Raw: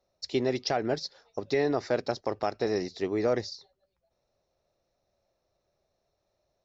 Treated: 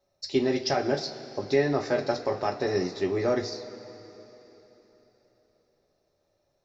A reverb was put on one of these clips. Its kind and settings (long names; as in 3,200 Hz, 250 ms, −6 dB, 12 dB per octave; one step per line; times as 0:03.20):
coupled-rooms reverb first 0.21 s, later 3.8 s, from −20 dB, DRR 1 dB